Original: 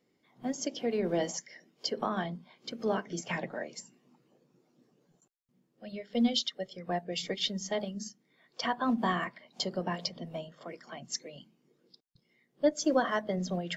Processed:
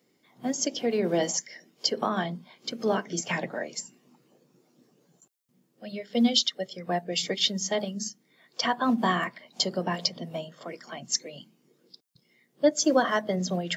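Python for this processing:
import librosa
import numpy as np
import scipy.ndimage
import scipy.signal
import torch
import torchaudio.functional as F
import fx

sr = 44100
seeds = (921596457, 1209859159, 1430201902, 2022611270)

y = scipy.signal.sosfilt(scipy.signal.butter(2, 100.0, 'highpass', fs=sr, output='sos'), x)
y = fx.high_shelf(y, sr, hz=5400.0, db=8.5)
y = y * librosa.db_to_amplitude(4.5)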